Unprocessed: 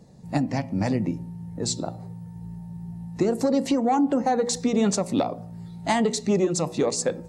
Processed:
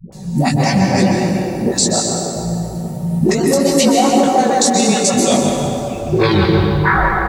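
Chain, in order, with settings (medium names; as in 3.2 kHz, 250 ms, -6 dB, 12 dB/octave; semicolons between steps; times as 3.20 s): tape stop on the ending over 2.17 s; pre-emphasis filter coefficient 0.8; reverb removal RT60 1.3 s; treble shelf 4.9 kHz -5.5 dB; comb 5.3 ms, depth 53%; compression, threshold -40 dBFS, peak gain reduction 11.5 dB; chorus 1.6 Hz, delay 17.5 ms, depth 4.4 ms; phase dispersion highs, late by 124 ms, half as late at 430 Hz; tape echo 147 ms, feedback 86%, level -7.5 dB, low-pass 1.9 kHz; plate-style reverb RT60 1.9 s, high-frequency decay 0.85×, pre-delay 115 ms, DRR 2.5 dB; loudness maximiser +34 dB; bit-crushed delay 195 ms, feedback 55%, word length 6-bit, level -14.5 dB; trim -2 dB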